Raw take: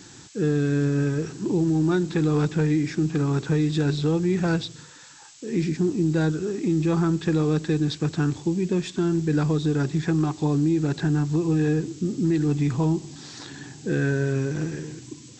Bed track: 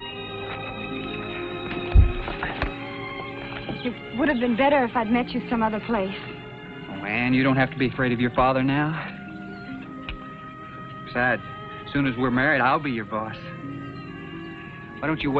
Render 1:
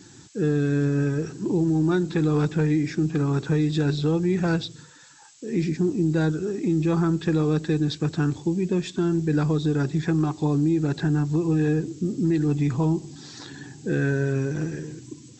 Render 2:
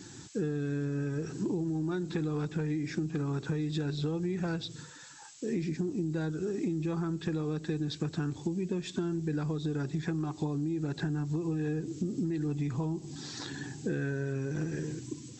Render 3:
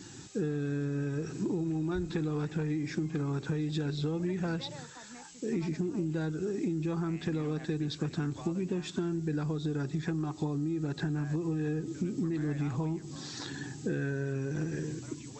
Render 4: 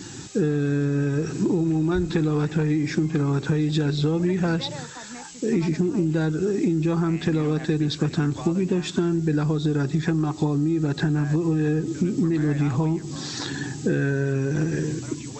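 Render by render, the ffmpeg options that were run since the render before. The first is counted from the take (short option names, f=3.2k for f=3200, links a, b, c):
-af "afftdn=nr=6:nf=-47"
-af "acompressor=threshold=-29dB:ratio=10"
-filter_complex "[1:a]volume=-29dB[a];[0:a][a]amix=inputs=2:normalize=0"
-af "volume=10dB"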